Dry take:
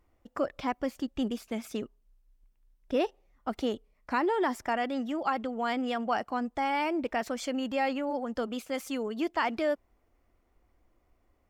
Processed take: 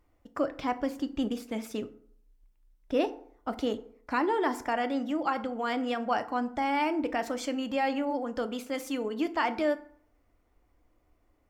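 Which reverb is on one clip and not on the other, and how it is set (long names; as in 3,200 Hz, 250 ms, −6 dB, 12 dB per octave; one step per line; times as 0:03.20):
feedback delay network reverb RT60 0.6 s, low-frequency decay 1×, high-frequency decay 0.55×, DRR 9.5 dB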